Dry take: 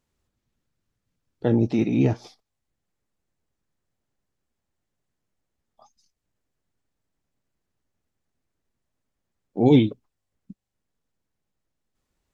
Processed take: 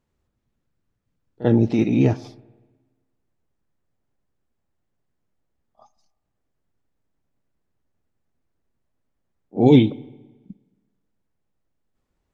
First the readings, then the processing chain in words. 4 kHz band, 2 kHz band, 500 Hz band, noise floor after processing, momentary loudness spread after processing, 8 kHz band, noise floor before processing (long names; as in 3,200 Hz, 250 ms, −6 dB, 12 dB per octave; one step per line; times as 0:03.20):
+3.0 dB, +3.0 dB, +3.0 dB, −76 dBFS, 13 LU, can't be measured, −81 dBFS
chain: echo ahead of the sound 43 ms −17 dB
spring reverb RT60 1.3 s, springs 53/57 ms, chirp 50 ms, DRR 20 dB
one half of a high-frequency compander decoder only
level +3 dB